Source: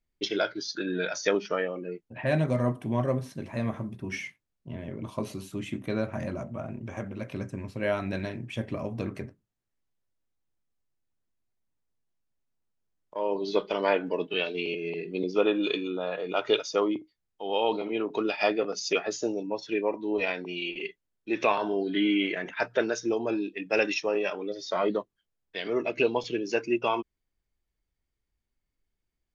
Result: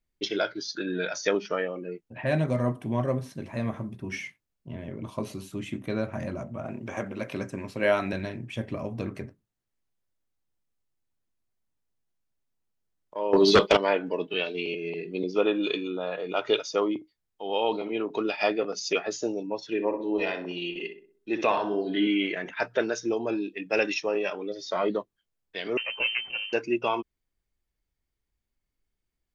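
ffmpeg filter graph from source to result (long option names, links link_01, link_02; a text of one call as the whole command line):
ffmpeg -i in.wav -filter_complex "[0:a]asettb=1/sr,asplit=3[link_01][link_02][link_03];[link_01]atrim=end=6.654[link_04];[link_02]atrim=start=6.65:end=8.13,asetpts=PTS-STARTPTS,afade=type=in:duration=0.004:curve=qsin,afade=type=out:start_time=1.476:duration=0.004:curve=qsin,highpass=frequency=310:poles=1,acontrast=52[link_05];[link_03]atrim=start=8.126[link_06];[link_04][link_05]acrossfade=duration=0.004:curve1=hsin:curve2=qsin[link_07];[link_07][link_06]acrossfade=duration=0.004:curve1=qsin:curve2=hsin,asettb=1/sr,asplit=3[link_08][link_09][link_10];[link_08]atrim=end=13.334[link_11];[link_09]atrim=start=13.33:end=13.77,asetpts=PTS-STARTPTS,afade=type=in:duration=0.004:curve=qsin,afade=type=out:start_time=0.436:duration=0.004:curve=qsin,highshelf=frequency=4600:gain=4.5,agate=range=-33dB:threshold=-36dB:ratio=3:release=100:detection=peak,aeval=exprs='0.282*sin(PI/2*3.16*val(0)/0.282)':channel_layout=same[link_12];[link_10]atrim=start=13.766[link_13];[link_11][link_12]acrossfade=duration=0.004:curve1=hsin:curve2=qsin[link_14];[link_14][link_13]acrossfade=duration=0.004:curve1=qsin:curve2=hsin,asettb=1/sr,asplit=3[link_15][link_16][link_17];[link_15]atrim=end=19.684[link_18];[link_16]atrim=start=19.68:end=22.07,asetpts=PTS-STARTPTS,afade=type=in:duration=0.004:curve=qsin,afade=type=out:start_time=2.386:duration=0.004:curve=qsin,bandreject=frequency=2300:width=9.6,asplit=2[link_19][link_20];[link_20]adelay=63,lowpass=frequency=1500:poles=1,volume=-7dB,asplit=2[link_21][link_22];[link_22]adelay=63,lowpass=frequency=1500:poles=1,volume=0.47,asplit=2[link_23][link_24];[link_24]adelay=63,lowpass=frequency=1500:poles=1,volume=0.47,asplit=2[link_25][link_26];[link_26]adelay=63,lowpass=frequency=1500:poles=1,volume=0.47,asplit=2[link_27][link_28];[link_28]adelay=63,lowpass=frequency=1500:poles=1,volume=0.47,asplit=2[link_29][link_30];[link_30]adelay=63,lowpass=frequency=1500:poles=1,volume=0.47[link_31];[link_19][link_21][link_23][link_25][link_27][link_29][link_31]amix=inputs=7:normalize=0,atrim=end_sample=105399[link_32];[link_17]atrim=start=22.066[link_33];[link_18][link_32]acrossfade=duration=0.004:curve1=hsin:curve2=qsin[link_34];[link_34][link_33]acrossfade=duration=0.004:curve1=qsin:curve2=hsin,asettb=1/sr,asplit=3[link_35][link_36][link_37];[link_35]atrim=end=25.774[link_38];[link_36]atrim=start=25.77:end=26.53,asetpts=PTS-STARTPTS,afade=type=in:duration=0.004:curve=qsin,afade=type=out:start_time=0.756:duration=0.004:curve=qsin,aeval=exprs='if(lt(val(0),0),0.251*val(0),val(0))':channel_layout=same,lowpass=frequency=2600:width_type=q:width=0.5098,lowpass=frequency=2600:width_type=q:width=0.6013,lowpass=frequency=2600:width_type=q:width=0.9,lowpass=frequency=2600:width_type=q:width=2.563,afreqshift=-3100[link_39];[link_37]atrim=start=26.526[link_40];[link_38][link_39]acrossfade=duration=0.004:curve1=hsin:curve2=qsin[link_41];[link_41][link_40]acrossfade=duration=0.004:curve1=qsin:curve2=hsin" out.wav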